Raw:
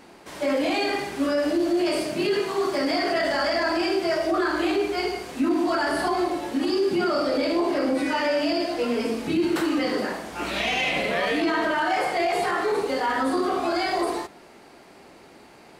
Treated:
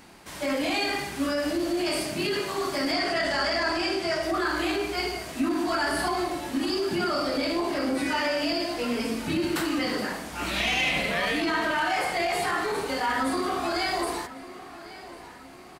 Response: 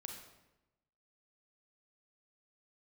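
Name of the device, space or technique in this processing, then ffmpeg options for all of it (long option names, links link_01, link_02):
smiley-face EQ: -filter_complex "[0:a]asettb=1/sr,asplit=3[link_01][link_02][link_03];[link_01]atrim=end=2.924[link_04];[link_02]atrim=start=2.92:end=4.23,asetpts=PTS-STARTPTS,afade=type=in:duration=0.004:curve=qsin,afade=type=out:start_time=1.306:duration=0.004:curve=qsin,lowpass=9500[link_05];[link_03]atrim=start=4.226[link_06];[link_04][link_05]acrossfade=duration=0.004:curve1=hsin:curve2=qsin[link_07];[link_07][link_06]acrossfade=duration=0.004:curve1=qsin:curve2=hsin,lowshelf=frequency=170:gain=5.5,equalizer=frequency=430:width_type=o:width=1.7:gain=-7,highshelf=frequency=8500:gain=6.5,asplit=2[link_08][link_09];[link_09]adelay=1099,lowpass=frequency=4500:poles=1,volume=-16dB,asplit=2[link_10][link_11];[link_11]adelay=1099,lowpass=frequency=4500:poles=1,volume=0.48,asplit=2[link_12][link_13];[link_13]adelay=1099,lowpass=frequency=4500:poles=1,volume=0.48,asplit=2[link_14][link_15];[link_15]adelay=1099,lowpass=frequency=4500:poles=1,volume=0.48[link_16];[link_08][link_10][link_12][link_14][link_16]amix=inputs=5:normalize=0"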